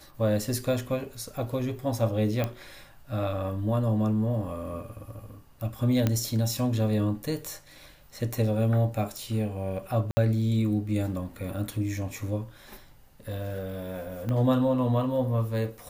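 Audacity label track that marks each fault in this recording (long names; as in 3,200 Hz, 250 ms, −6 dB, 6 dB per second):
2.440000	2.440000	click −15 dBFS
6.070000	6.070000	click −11 dBFS
10.110000	10.170000	drop-out 60 ms
14.290000	14.290000	click −20 dBFS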